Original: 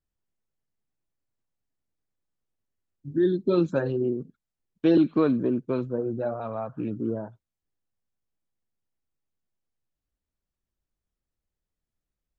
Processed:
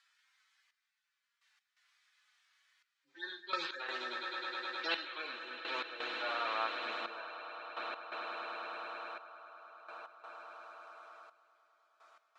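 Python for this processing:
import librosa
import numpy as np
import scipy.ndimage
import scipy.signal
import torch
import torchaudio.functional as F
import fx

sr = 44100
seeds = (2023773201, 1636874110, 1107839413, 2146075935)

p1 = fx.hpss_only(x, sr, part='harmonic')
p2 = scipy.signal.sosfilt(scipy.signal.butter(4, 1400.0, 'highpass', fs=sr, output='sos'), p1)
p3 = fx.notch(p2, sr, hz=2800.0, q=16.0)
p4 = fx.doubler(p3, sr, ms=36.0, db=-10.5)
p5 = p4 + fx.echo_swell(p4, sr, ms=104, loudest=8, wet_db=-18.0, dry=0)
p6 = fx.step_gate(p5, sr, bpm=85, pattern='xxxx....x.xx', floor_db=-12.0, edge_ms=4.5)
p7 = scipy.signal.sosfilt(scipy.signal.butter(2, 3600.0, 'lowpass', fs=sr, output='sos'), p6)
p8 = fx.spectral_comp(p7, sr, ratio=2.0)
y = p8 * librosa.db_to_amplitude(14.0)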